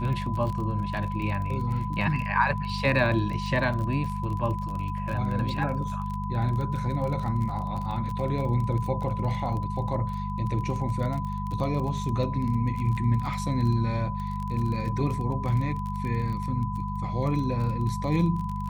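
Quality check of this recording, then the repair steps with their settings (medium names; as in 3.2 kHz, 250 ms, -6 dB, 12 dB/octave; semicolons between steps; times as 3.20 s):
crackle 24 per s -32 dBFS
hum 50 Hz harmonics 4 -32 dBFS
whine 1 kHz -34 dBFS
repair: de-click; band-stop 1 kHz, Q 30; de-hum 50 Hz, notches 4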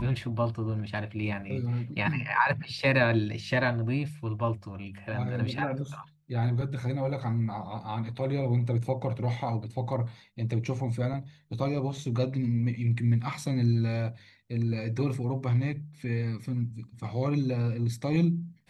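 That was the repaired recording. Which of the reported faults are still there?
nothing left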